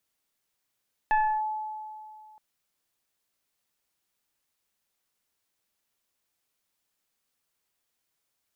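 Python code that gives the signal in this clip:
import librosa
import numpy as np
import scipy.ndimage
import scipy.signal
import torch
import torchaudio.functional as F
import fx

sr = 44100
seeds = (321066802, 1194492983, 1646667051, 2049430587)

y = fx.fm2(sr, length_s=1.27, level_db=-18.5, carrier_hz=861.0, ratio=1.01, index=0.8, index_s=0.31, decay_s=2.37, shape='linear')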